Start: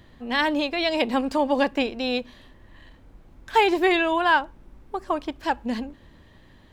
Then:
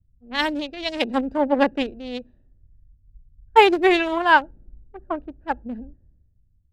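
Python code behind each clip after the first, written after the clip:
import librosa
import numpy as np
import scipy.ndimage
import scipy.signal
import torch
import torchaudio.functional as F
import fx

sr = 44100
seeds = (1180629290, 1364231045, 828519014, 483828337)

y = fx.wiener(x, sr, points=41)
y = fx.env_lowpass(y, sr, base_hz=1600.0, full_db=-20.5)
y = fx.band_widen(y, sr, depth_pct=100)
y = y * 10.0 ** (1.0 / 20.0)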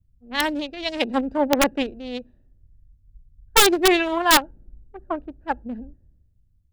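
y = (np.mod(10.0 ** (6.5 / 20.0) * x + 1.0, 2.0) - 1.0) / 10.0 ** (6.5 / 20.0)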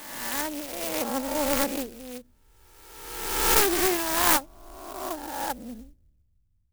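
y = fx.spec_swells(x, sr, rise_s=1.34)
y = fx.clock_jitter(y, sr, seeds[0], jitter_ms=0.089)
y = y * 10.0 ** (-9.0 / 20.0)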